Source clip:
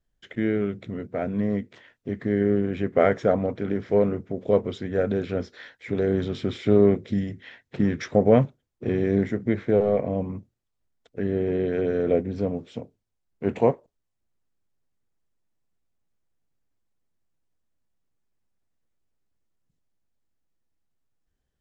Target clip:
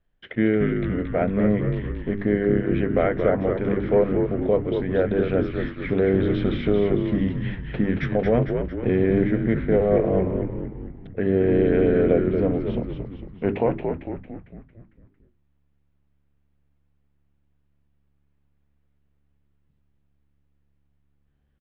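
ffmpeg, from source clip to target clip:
ffmpeg -i in.wav -filter_complex "[0:a]lowpass=frequency=3200:width=0.5412,lowpass=frequency=3200:width=1.3066,bandreject=frequency=50:width_type=h:width=6,bandreject=frequency=100:width_type=h:width=6,bandreject=frequency=150:width_type=h:width=6,bandreject=frequency=200:width_type=h:width=6,bandreject=frequency=250:width_type=h:width=6,bandreject=frequency=300:width_type=h:width=6,bandreject=frequency=350:width_type=h:width=6,bandreject=frequency=400:width_type=h:width=6,alimiter=limit=-16dB:level=0:latency=1:release=462,asplit=8[link_01][link_02][link_03][link_04][link_05][link_06][link_07][link_08];[link_02]adelay=226,afreqshift=-71,volume=-5dB[link_09];[link_03]adelay=452,afreqshift=-142,volume=-10.4dB[link_10];[link_04]adelay=678,afreqshift=-213,volume=-15.7dB[link_11];[link_05]adelay=904,afreqshift=-284,volume=-21.1dB[link_12];[link_06]adelay=1130,afreqshift=-355,volume=-26.4dB[link_13];[link_07]adelay=1356,afreqshift=-426,volume=-31.8dB[link_14];[link_08]adelay=1582,afreqshift=-497,volume=-37.1dB[link_15];[link_01][link_09][link_10][link_11][link_12][link_13][link_14][link_15]amix=inputs=8:normalize=0,volume=5.5dB" out.wav

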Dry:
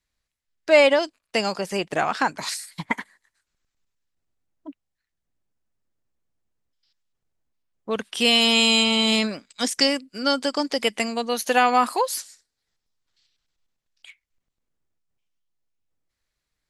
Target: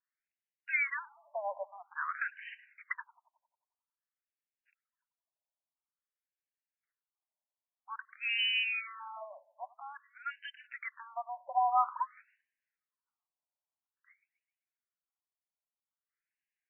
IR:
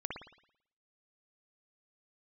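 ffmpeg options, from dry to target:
-filter_complex "[0:a]acrusher=bits=5:mode=log:mix=0:aa=0.000001,asplit=2[link_01][link_02];[1:a]atrim=start_sample=2205,asetrate=28224,aresample=44100[link_03];[link_02][link_03]afir=irnorm=-1:irlink=0,volume=-22.5dB[link_04];[link_01][link_04]amix=inputs=2:normalize=0,afftfilt=real='re*between(b*sr/1024,750*pow(2200/750,0.5+0.5*sin(2*PI*0.5*pts/sr))/1.41,750*pow(2200/750,0.5+0.5*sin(2*PI*0.5*pts/sr))*1.41)':imag='im*between(b*sr/1024,750*pow(2200/750,0.5+0.5*sin(2*PI*0.5*pts/sr))/1.41,750*pow(2200/750,0.5+0.5*sin(2*PI*0.5*pts/sr))*1.41)':win_size=1024:overlap=0.75,volume=-8.5dB"

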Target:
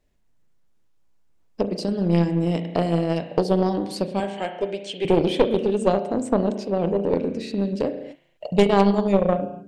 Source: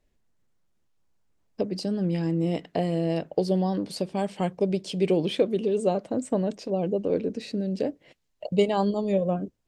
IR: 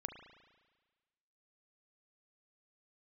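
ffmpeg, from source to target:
-filter_complex "[0:a]asettb=1/sr,asplit=3[link_01][link_02][link_03];[link_01]atrim=end=4.204[link_04];[link_02]atrim=start=4.2:end=5.05,asetpts=PTS-STARTPTS,afade=type=in:duration=0.004:curve=qsin,afade=type=out:start_time=0.846:duration=0.004:curve=qsin,highpass=410,equalizer=frequency=1100:width_type=q:width=4:gain=-8,equalizer=frequency=1700:width_type=q:width=4:gain=6,equalizer=frequency=3000:width_type=q:width=4:gain=4,equalizer=frequency=5100:width_type=q:width=4:gain=-9,lowpass=frequency=8300:width=0.5412,lowpass=frequency=8300:width=1.3066[link_05];[link_03]atrim=start=5.046[link_06];[link_04][link_05]acrossfade=duration=0.004:curve1=hsin:curve2=qsin[link_07];[link_07][link_06]acrossfade=duration=0.004:curve1=qsin:curve2=hsin[link_08];[1:a]atrim=start_sample=2205,afade=type=out:start_time=0.32:duration=0.01,atrim=end_sample=14553[link_09];[link_08][link_09]afir=irnorm=-1:irlink=0,aeval=exprs='0.282*(cos(1*acos(clip(val(0)/0.282,-1,1)))-cos(1*PI/2))+0.0316*(cos(3*acos(clip(val(0)/0.282,-1,1)))-cos(3*PI/2))+0.0447*(cos(6*acos(clip(val(0)/0.282,-1,1)))-cos(6*PI/2))+0.0251*(cos(8*acos(clip(val(0)/0.282,-1,1)))-cos(8*PI/2))':channel_layout=same,volume=9dB"

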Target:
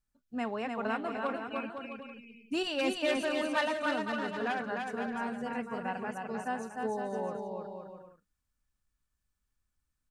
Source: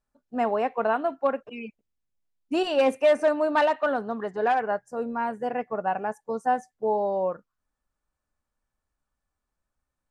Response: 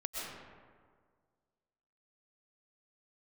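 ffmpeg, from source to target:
-af "equalizer=frequency=650:width_type=o:width=2.1:gain=-13.5,aecho=1:1:300|510|657|759.9|831.9:0.631|0.398|0.251|0.158|0.1"

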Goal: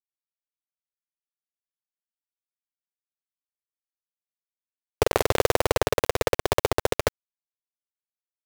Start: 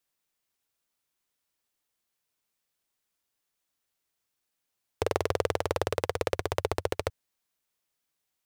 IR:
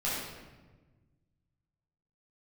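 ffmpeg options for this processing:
-filter_complex "[0:a]asplit=2[link_01][link_02];[1:a]atrim=start_sample=2205,atrim=end_sample=4410,asetrate=37044,aresample=44100[link_03];[link_02][link_03]afir=irnorm=-1:irlink=0,volume=-18dB[link_04];[link_01][link_04]amix=inputs=2:normalize=0,acrusher=bits=4:mix=0:aa=0.000001,volume=5dB"

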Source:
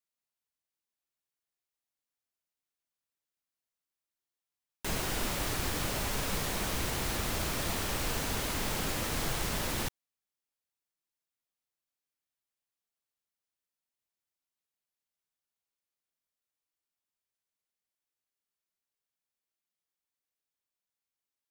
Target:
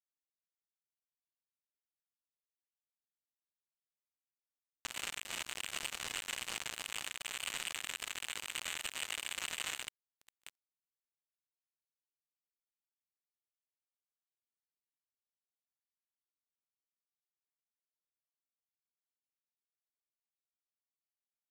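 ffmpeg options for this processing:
ffmpeg -i in.wav -af "highpass=frequency=77:width=0.5412,highpass=frequency=77:width=1.3066,aecho=1:1:669:0.282,lowpass=frequency=2600:width_type=q:width=0.5098,lowpass=frequency=2600:width_type=q:width=0.6013,lowpass=frequency=2600:width_type=q:width=0.9,lowpass=frequency=2600:width_type=q:width=2.563,afreqshift=-3100,highshelf=frequency=2400:gain=9,agate=range=-33dB:threshold=-36dB:ratio=3:detection=peak,asetnsamples=nb_out_samples=441:pad=0,asendcmd='7.18 equalizer g -13.5',equalizer=frequency=180:width=0.3:gain=-3,acompressor=threshold=-38dB:ratio=3,alimiter=level_in=12.5dB:limit=-24dB:level=0:latency=1:release=411,volume=-12.5dB,acrusher=bits=5:mix=0:aa=0.5,volume=17.5dB" out.wav

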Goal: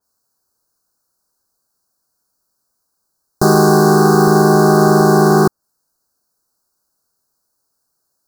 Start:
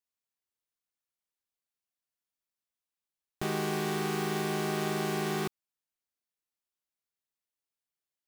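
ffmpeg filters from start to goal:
ffmpeg -i in.wav -af "asuperstop=centerf=2600:order=12:qfactor=0.97,apsyclip=23.5dB,adynamicequalizer=threshold=0.0355:dfrequency=2600:dqfactor=0.7:tfrequency=2600:tqfactor=0.7:attack=5:release=100:ratio=0.375:range=3:mode=cutabove:tftype=highshelf,volume=-1.5dB" out.wav

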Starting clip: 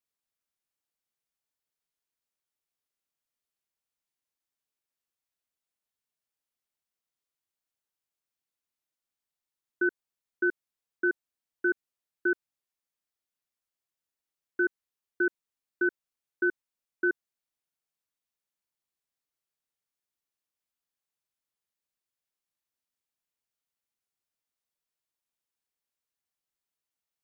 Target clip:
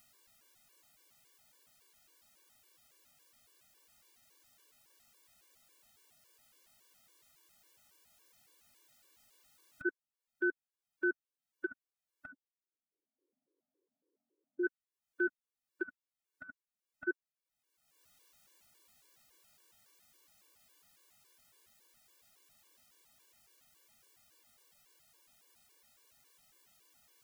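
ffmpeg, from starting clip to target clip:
ffmpeg -i in.wav -filter_complex "[0:a]acompressor=mode=upward:threshold=-35dB:ratio=2.5,asplit=3[link_01][link_02][link_03];[link_01]afade=type=out:start_time=12.3:duration=0.02[link_04];[link_02]asuperpass=centerf=340:order=4:qfactor=1.6,afade=type=in:start_time=12.3:duration=0.02,afade=type=out:start_time=14.63:duration=0.02[link_05];[link_03]afade=type=in:start_time=14.63:duration=0.02[link_06];[link_04][link_05][link_06]amix=inputs=3:normalize=0,afftfilt=real='re*gt(sin(2*PI*3.6*pts/sr)*(1-2*mod(floor(b*sr/1024/300),2)),0)':imag='im*gt(sin(2*PI*3.6*pts/sr)*(1-2*mod(floor(b*sr/1024/300),2)),0)':win_size=1024:overlap=0.75,volume=-5dB" out.wav

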